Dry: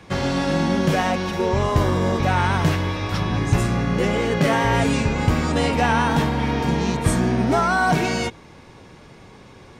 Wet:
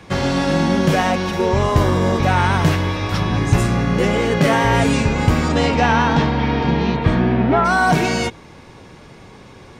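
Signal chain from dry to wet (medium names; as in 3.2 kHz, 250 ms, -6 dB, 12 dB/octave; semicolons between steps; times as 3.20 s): 5.48–7.64 s: low-pass 7.8 kHz -> 3 kHz 24 dB/octave; trim +3.5 dB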